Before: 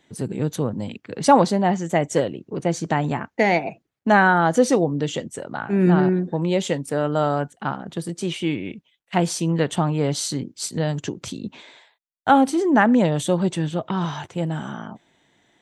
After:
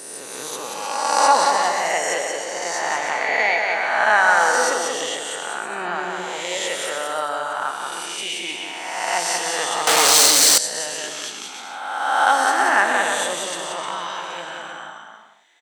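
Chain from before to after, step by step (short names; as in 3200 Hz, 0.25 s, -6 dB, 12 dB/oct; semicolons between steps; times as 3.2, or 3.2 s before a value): spectral swells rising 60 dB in 1.65 s; on a send: bouncing-ball echo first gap 0.18 s, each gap 0.7×, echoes 5; 9.87–10.58 on the sum: sample leveller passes 5; HPF 920 Hz 12 dB/oct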